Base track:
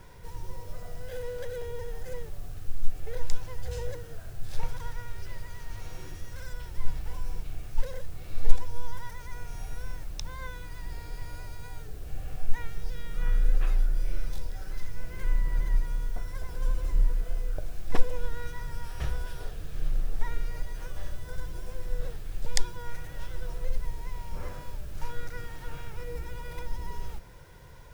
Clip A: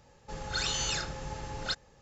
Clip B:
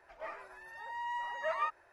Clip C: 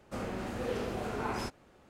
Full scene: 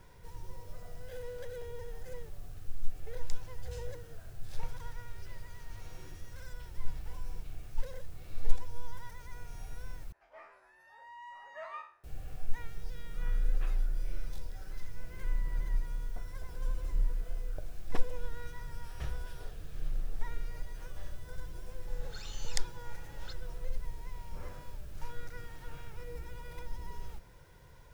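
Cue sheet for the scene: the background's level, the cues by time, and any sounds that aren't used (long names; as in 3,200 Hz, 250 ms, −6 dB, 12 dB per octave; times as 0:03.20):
base track −6.5 dB
0:10.12: overwrite with B −11 dB + peak hold with a decay on every bin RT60 0.42 s
0:21.59: mix in A −17 dB
not used: C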